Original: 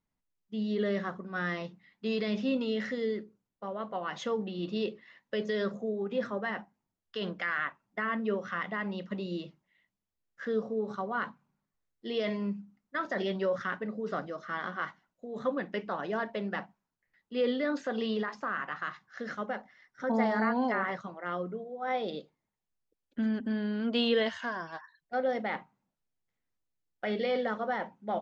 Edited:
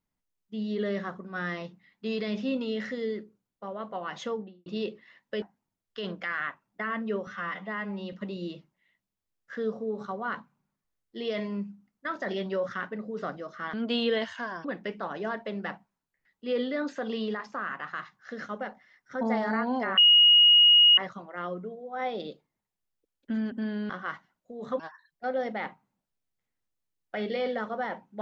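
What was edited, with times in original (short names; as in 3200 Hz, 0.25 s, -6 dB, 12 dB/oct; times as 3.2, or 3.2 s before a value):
4.24–4.66 studio fade out
5.42–6.6 cut
8.45–9.02 stretch 1.5×
14.63–15.53 swap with 23.78–24.69
20.86 add tone 2880 Hz -14 dBFS 1.00 s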